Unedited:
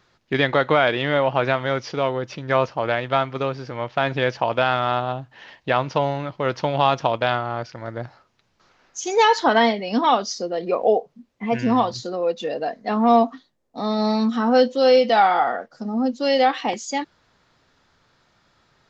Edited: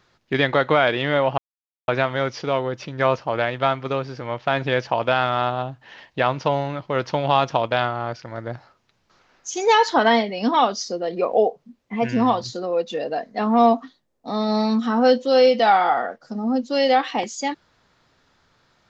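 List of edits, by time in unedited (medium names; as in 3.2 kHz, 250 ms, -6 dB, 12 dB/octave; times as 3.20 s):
1.38 s: insert silence 0.50 s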